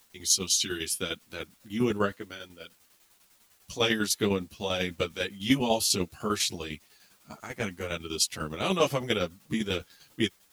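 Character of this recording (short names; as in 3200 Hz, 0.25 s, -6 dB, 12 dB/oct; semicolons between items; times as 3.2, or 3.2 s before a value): a quantiser's noise floor 10-bit, dither triangular; tremolo saw down 10 Hz, depth 70%; a shimmering, thickened sound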